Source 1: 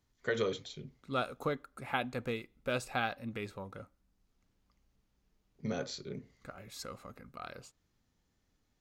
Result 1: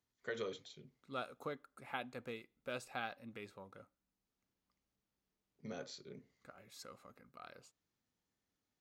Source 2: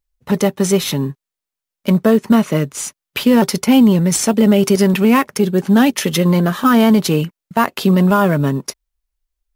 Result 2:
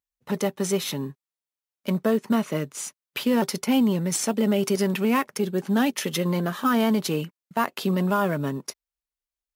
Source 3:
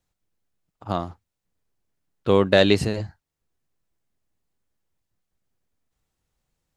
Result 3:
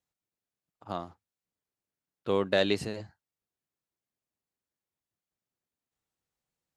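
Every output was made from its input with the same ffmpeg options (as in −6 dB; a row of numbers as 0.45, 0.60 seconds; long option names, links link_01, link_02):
-af "highpass=frequency=190:poles=1,volume=-8.5dB"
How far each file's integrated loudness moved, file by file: −9.0, −10.5, −9.0 LU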